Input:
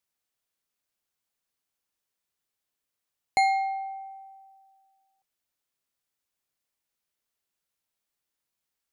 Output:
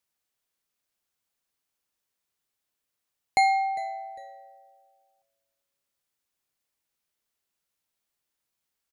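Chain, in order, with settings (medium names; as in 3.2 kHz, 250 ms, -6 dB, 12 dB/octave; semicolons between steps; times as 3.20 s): frequency-shifting echo 402 ms, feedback 30%, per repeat -110 Hz, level -20 dB; trim +1.5 dB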